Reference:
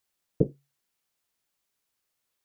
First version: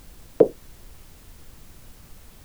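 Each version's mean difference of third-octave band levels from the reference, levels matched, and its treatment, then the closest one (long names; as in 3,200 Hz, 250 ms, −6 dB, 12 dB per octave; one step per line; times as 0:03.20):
9.5 dB: Chebyshev high-pass filter 900 Hz, order 2
background noise brown −72 dBFS
boost into a limiter +27 dB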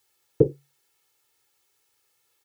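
2.0 dB: high-pass filter 80 Hz 12 dB per octave
comb filter 2.3 ms, depth 89%
brickwall limiter −11.5 dBFS, peak gain reduction 5.5 dB
level +7.5 dB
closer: second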